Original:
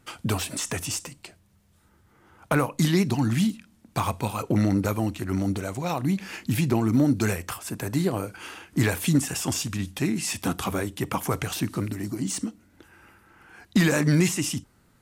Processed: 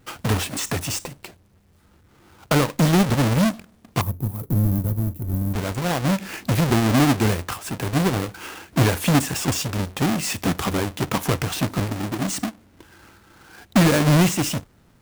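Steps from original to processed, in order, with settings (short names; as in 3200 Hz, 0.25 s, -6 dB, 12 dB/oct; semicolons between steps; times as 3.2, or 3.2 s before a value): half-waves squared off; 4.01–5.54 EQ curve 130 Hz 0 dB, 2800 Hz -27 dB, 7000 Hz -18 dB, 13000 Hz +3 dB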